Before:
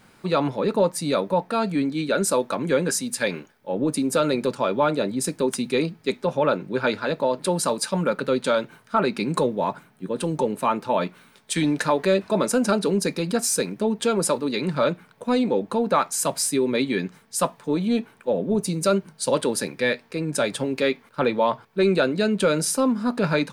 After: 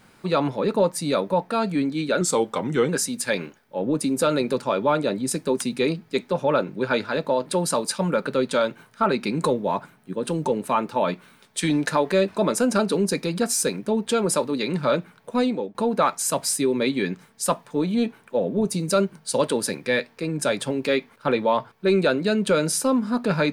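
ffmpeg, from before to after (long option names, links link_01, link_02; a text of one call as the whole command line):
ffmpeg -i in.wav -filter_complex "[0:a]asplit=4[link_01][link_02][link_03][link_04];[link_01]atrim=end=2.214[link_05];[link_02]atrim=start=2.21:end=2.82,asetpts=PTS-STARTPTS,asetrate=39690,aresample=44100[link_06];[link_03]atrim=start=2.816:end=15.68,asetpts=PTS-STARTPTS,afade=type=out:start_time=12.524:duration=0.34:silence=0.177828[link_07];[link_04]atrim=start=15.68,asetpts=PTS-STARTPTS,afade=type=in:duration=0.004:curve=hsin:silence=0.177828[link_08];[link_05][link_06]acrossfade=duration=0.004:curve1=hsin:curve2=hsin[link_09];[link_07][link_08]concat=n=2:v=0:a=1[link_10];[link_09][link_10]acrossfade=duration=0.004:curve1=hsin:curve2=hsin" out.wav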